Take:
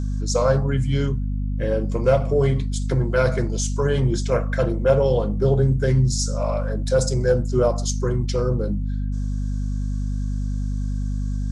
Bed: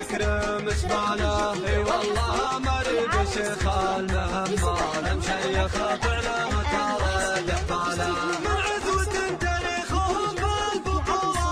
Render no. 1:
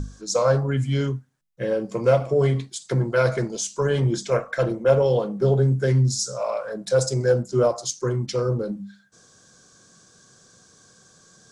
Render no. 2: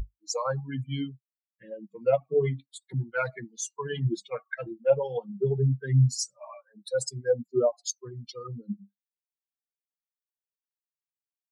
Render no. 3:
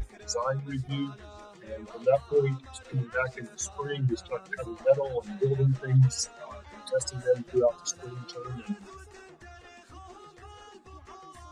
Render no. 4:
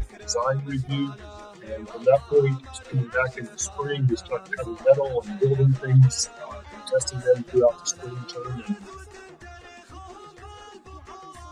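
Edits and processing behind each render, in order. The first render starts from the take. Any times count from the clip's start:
mains-hum notches 50/100/150/200/250/300 Hz
spectral dynamics exaggerated over time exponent 3
mix in bed −23.5 dB
level +5.5 dB

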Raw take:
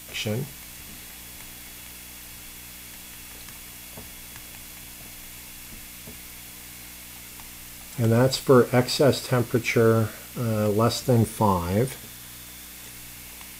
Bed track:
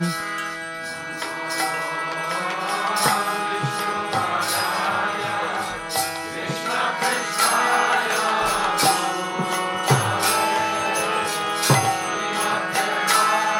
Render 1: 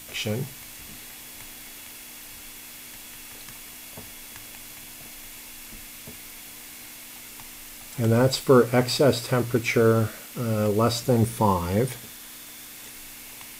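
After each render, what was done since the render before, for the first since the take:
hum removal 60 Hz, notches 3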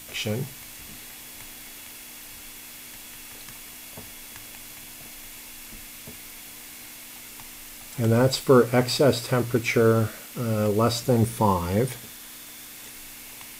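no processing that can be heard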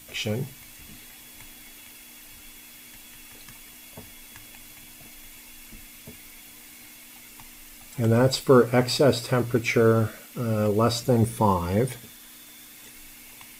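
broadband denoise 6 dB, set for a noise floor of −43 dBFS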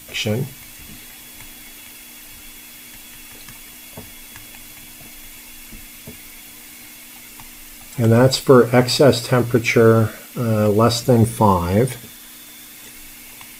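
level +7 dB
brickwall limiter −1 dBFS, peak gain reduction 2 dB

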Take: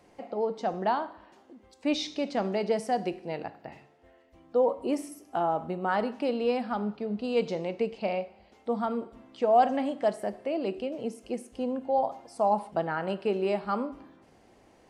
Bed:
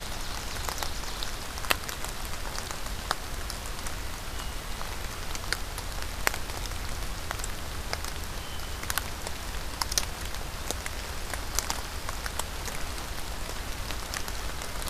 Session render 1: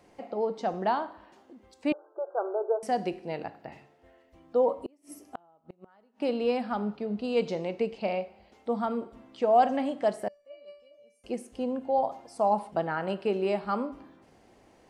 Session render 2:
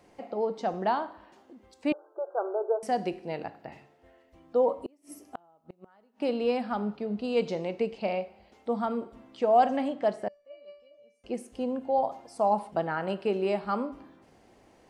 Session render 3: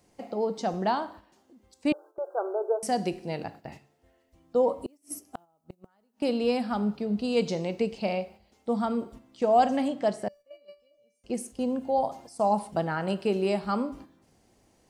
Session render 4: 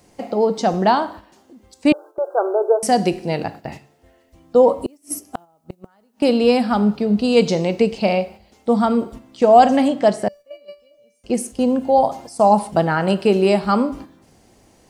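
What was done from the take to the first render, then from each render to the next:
0:01.92–0:02.83: linear-phase brick-wall band-pass 340–1,600 Hz; 0:04.85–0:06.22: gate with flip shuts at −24 dBFS, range −34 dB; 0:10.28–0:11.24: tuned comb filter 580 Hz, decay 0.44 s, mix 100%
0:09.88–0:11.35: high-frequency loss of the air 76 metres
noise gate −47 dBFS, range −8 dB; bass and treble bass +7 dB, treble +12 dB
level +11 dB; brickwall limiter −1 dBFS, peak gain reduction 1 dB

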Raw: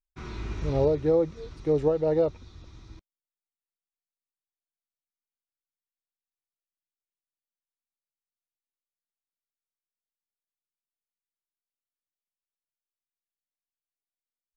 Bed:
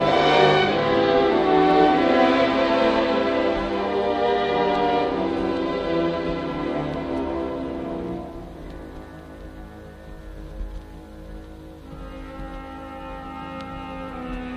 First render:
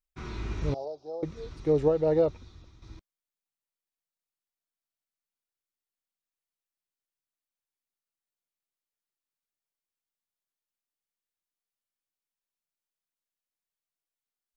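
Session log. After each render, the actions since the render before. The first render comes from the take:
0:00.74–0:01.23: pair of resonant band-passes 1,900 Hz, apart 2.8 octaves
0:02.32–0:02.82: fade out, to −9.5 dB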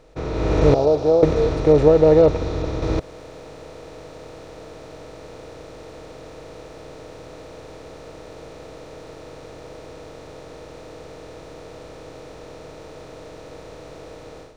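compressor on every frequency bin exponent 0.4
automatic gain control gain up to 14 dB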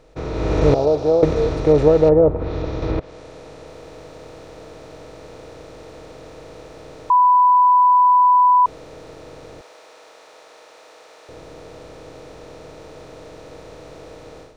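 0:02.08–0:03.67: treble cut that deepens with the level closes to 980 Hz, closed at −12.5 dBFS
0:07.10–0:08.66: beep over 993 Hz −9.5 dBFS
0:09.61–0:11.29: high-pass filter 760 Hz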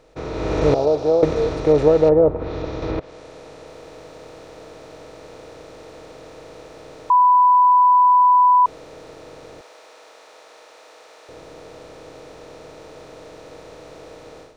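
low-shelf EQ 180 Hz −6.5 dB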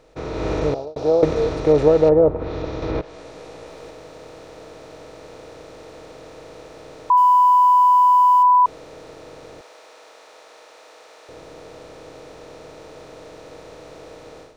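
0:00.48–0:00.96: fade out
0:02.93–0:03.91: double-tracking delay 17 ms −3 dB
0:07.17–0:08.43: mu-law and A-law mismatch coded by A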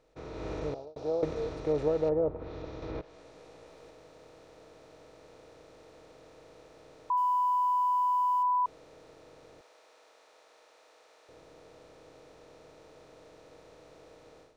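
level −14 dB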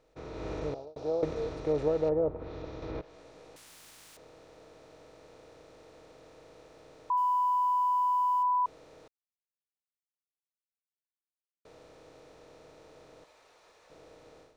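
0:03.56–0:04.17: every bin compressed towards the loudest bin 10 to 1
0:09.08–0:11.65: silence
0:13.24–0:13.90: fill with room tone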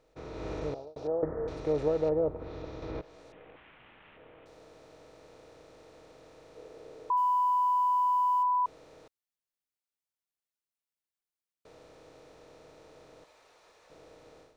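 0:01.07–0:01.48: elliptic low-pass filter 1,800 Hz
0:03.32–0:04.46: variable-slope delta modulation 16 kbit/s
0:06.56–0:08.44: parametric band 430 Hz +9.5 dB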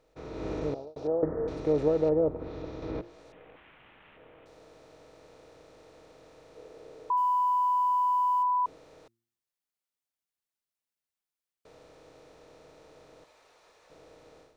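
hum removal 115.1 Hz, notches 3
dynamic equaliser 250 Hz, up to +6 dB, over −47 dBFS, Q 0.82

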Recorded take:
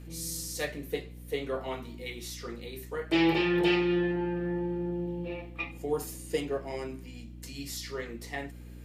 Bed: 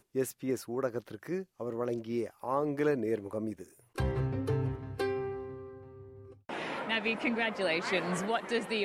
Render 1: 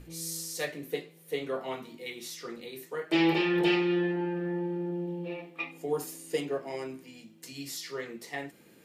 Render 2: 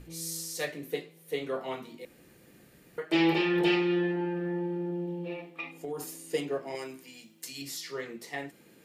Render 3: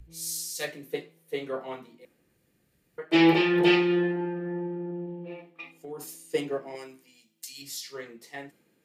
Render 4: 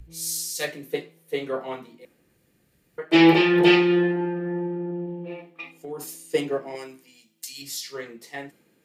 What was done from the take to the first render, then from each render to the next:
mains-hum notches 60/120/180/240/300 Hz
0:02.05–0:02.98: fill with room tone; 0:05.44–0:06.16: downward compressor, threshold −32 dBFS; 0:06.75–0:07.62: spectral tilt +2 dB per octave
upward compression, threshold −49 dBFS; multiband upward and downward expander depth 70%
level +4.5 dB

